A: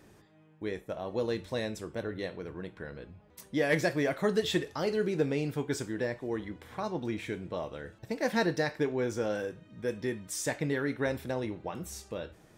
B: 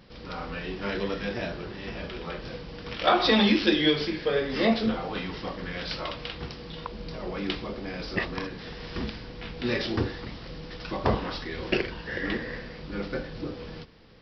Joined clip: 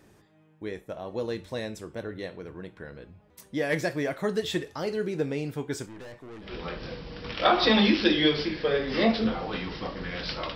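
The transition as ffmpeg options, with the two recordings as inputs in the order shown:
-filter_complex "[0:a]asettb=1/sr,asplit=3[s0][s1][s2];[s0]atrim=end=5.864[s3];[s1]atrim=start=5.86:end=6.54,asetpts=PTS-STARTPTS,afade=t=in:d=0.004:c=qsin,afade=t=out:st=0.676:d=0.004:c=qsin,aeval=exprs='(tanh(112*val(0)+0.5)-tanh(0.5))/112':c=same[s4];[s2]atrim=start=6.536[s5];[s3][s4]acrossfade=d=0.004:c1=hsin:c2=qsin[s6];[s6][s5]acrossfade=d=0.004:c1=qsin:c2=hsin,apad=whole_dur=10.55,atrim=end=10.55,atrim=end=6.54,asetpts=PTS-STARTPTS[s7];[1:a]atrim=start=2.02:end=6.17,asetpts=PTS-STARTPTS[s8];[s7][s8]acrossfade=d=0.14:c1=tri:c2=tri"

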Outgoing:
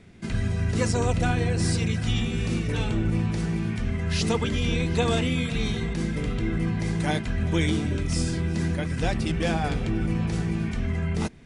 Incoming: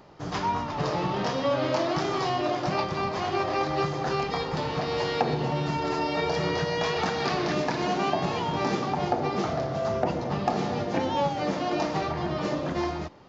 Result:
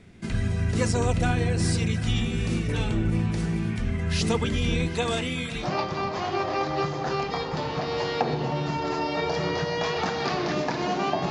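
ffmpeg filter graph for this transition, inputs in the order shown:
-filter_complex "[0:a]asettb=1/sr,asplit=3[s0][s1][s2];[s0]atrim=end=4.884[s3];[s1]atrim=start=4.88:end=5.68,asetpts=PTS-STARTPTS,afade=t=in:d=0.004:c=qsin,afade=t=out:st=0.796:d=0.004:c=qsin,lowshelf=f=300:g=-8.5[s4];[s2]atrim=start=5.676[s5];[s3][s4]acrossfade=d=0.004:c1=hsin:c2=qsin[s6];[s6][s5]acrossfade=d=0.004:c1=qsin:c2=hsin,apad=whole_dur=11.3,atrim=end=11.3,atrim=end=5.68,asetpts=PTS-STARTPTS[s7];[1:a]atrim=start=2.58:end=8.3,asetpts=PTS-STARTPTS[s8];[s7][s8]acrossfade=d=0.1:c1=tri:c2=tri"

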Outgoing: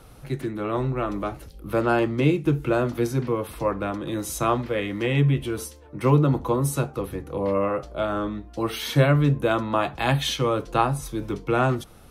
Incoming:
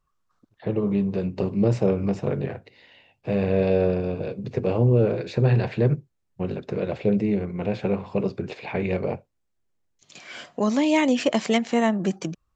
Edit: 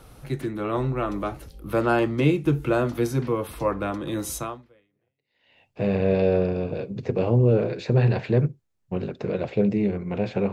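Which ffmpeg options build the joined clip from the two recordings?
-filter_complex "[0:a]apad=whole_dur=10.52,atrim=end=10.52,atrim=end=5.59,asetpts=PTS-STARTPTS[s0];[1:a]atrim=start=1.83:end=8,asetpts=PTS-STARTPTS[s1];[s0][s1]acrossfade=d=1.24:c1=exp:c2=exp"

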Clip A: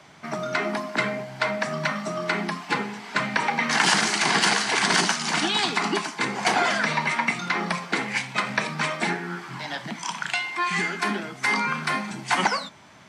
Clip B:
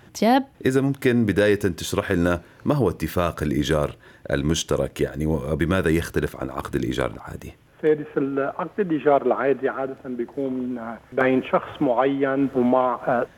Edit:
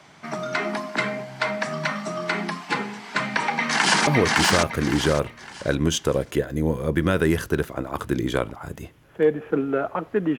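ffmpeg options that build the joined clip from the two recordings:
-filter_complex "[0:a]apad=whole_dur=10.38,atrim=end=10.38,atrim=end=4.072[s0];[1:a]atrim=start=2.708:end=9.02[s1];[s0][s1]acrossfade=d=0.004:c1=hsin:c2=hsin,asplit=2[s2][s3];[s3]afade=t=in:st=3.31:d=0.01,afade=t=out:st=4.07:d=0.01,aecho=0:1:560|1120|1680|2240:1|0.3|0.09|0.027[s4];[s2][s4]amix=inputs=2:normalize=0"

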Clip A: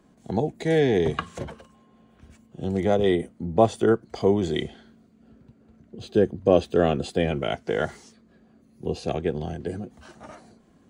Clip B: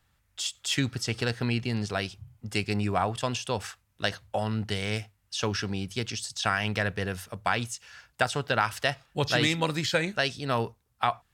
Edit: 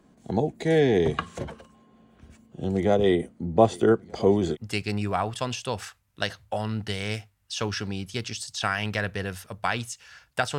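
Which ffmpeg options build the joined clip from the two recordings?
-filter_complex "[0:a]asplit=3[s0][s1][s2];[s0]afade=t=out:st=3.7:d=0.02[s3];[s1]aecho=1:1:616|1232|1848|2464:0.0944|0.0463|0.0227|0.0111,afade=t=in:st=3.7:d=0.02,afade=t=out:st=4.57:d=0.02[s4];[s2]afade=t=in:st=4.57:d=0.02[s5];[s3][s4][s5]amix=inputs=3:normalize=0,apad=whole_dur=10.58,atrim=end=10.58,atrim=end=4.57,asetpts=PTS-STARTPTS[s6];[1:a]atrim=start=2.33:end=8.4,asetpts=PTS-STARTPTS[s7];[s6][s7]acrossfade=d=0.06:c1=tri:c2=tri"

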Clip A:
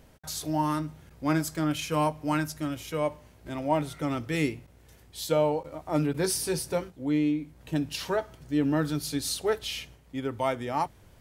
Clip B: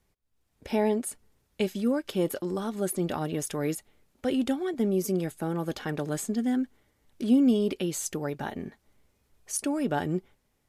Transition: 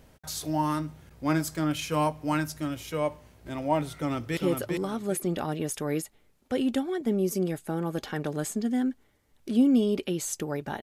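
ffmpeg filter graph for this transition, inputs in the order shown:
-filter_complex "[0:a]apad=whole_dur=10.82,atrim=end=10.82,atrim=end=4.372[s0];[1:a]atrim=start=2.098:end=8.55[s1];[s0][s1]acrossfade=d=0.004:c1=hsin:c2=hsin,asplit=2[s2][s3];[s3]afade=t=in:st=3.93:d=0.01,afade=t=out:st=4.37:d=0.01,aecho=0:1:400|800|1200:0.630957|0.157739|0.0394348[s4];[s2][s4]amix=inputs=2:normalize=0"

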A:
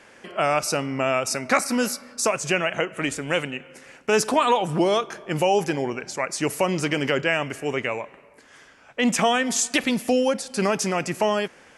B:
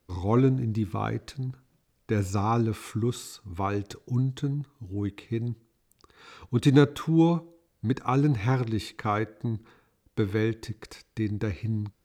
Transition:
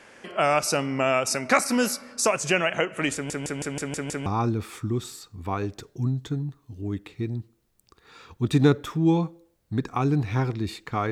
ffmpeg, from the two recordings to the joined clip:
-filter_complex "[0:a]apad=whole_dur=11.11,atrim=end=11.11,asplit=7[s0][s1][s2][s3][s4][s5][s6];[s0]atrim=end=3.302[s7];[s1]atrim=start=3.138:end=3.302[s8];[s2]atrim=start=3.138:end=3.302[s9];[s3]atrim=start=3.138:end=3.302[s10];[s4]atrim=start=3.138:end=3.302[s11];[s5]atrim=start=3.138:end=3.302[s12];[s6]atrim=start=3.138:end=3.302[s13];[1:a]atrim=start=2.378:end=9.23[s14];[s7][s8]acrossfade=d=0.004:c1=hsin:c2=hsin[s15];[s15][s9]acrossfade=d=0.004:c1=hsin:c2=hsin[s16];[s16][s10]acrossfade=d=0.004:c1=hsin:c2=hsin[s17];[s17][s11]acrossfade=d=0.004:c1=hsin:c2=hsin[s18];[s18][s12]acrossfade=d=0.004:c1=hsin:c2=hsin[s19];[s19][s13]acrossfade=d=0.004:c1=hsin:c2=hsin[s20];[s20][s14]acrossfade=d=0.004:c1=hsin:c2=hsin"

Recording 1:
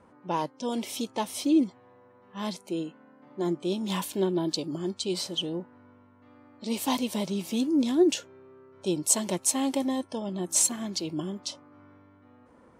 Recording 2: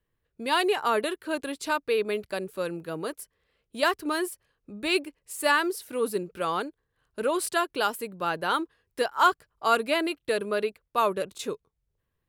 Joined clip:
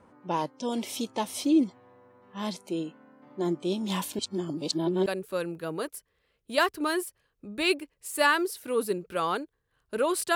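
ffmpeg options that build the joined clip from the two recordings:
-filter_complex "[0:a]apad=whole_dur=10.35,atrim=end=10.35,asplit=2[s0][s1];[s0]atrim=end=4.192[s2];[s1]atrim=start=4.188:end=5.062,asetpts=PTS-STARTPTS,areverse[s3];[1:a]atrim=start=2.308:end=7.6[s4];[s2][s3]acrossfade=d=0.004:c1=hsin:c2=hsin[s5];[s5][s4]acrossfade=d=0.004:c1=hsin:c2=hsin"

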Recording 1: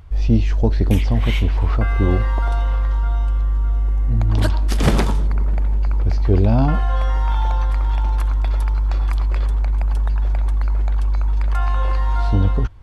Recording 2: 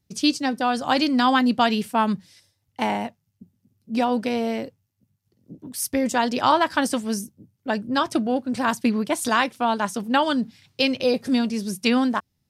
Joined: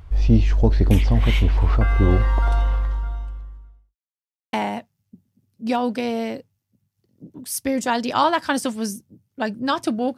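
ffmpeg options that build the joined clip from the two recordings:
-filter_complex "[0:a]apad=whole_dur=10.17,atrim=end=10.17,asplit=2[s0][s1];[s0]atrim=end=3.96,asetpts=PTS-STARTPTS,afade=t=out:st=2.59:d=1.37:c=qua[s2];[s1]atrim=start=3.96:end=4.53,asetpts=PTS-STARTPTS,volume=0[s3];[1:a]atrim=start=2.81:end=8.45,asetpts=PTS-STARTPTS,afade=t=in:d=0.004:c=hsin[s4];[s2][s3][s4]concat=n=3:v=0:a=1"

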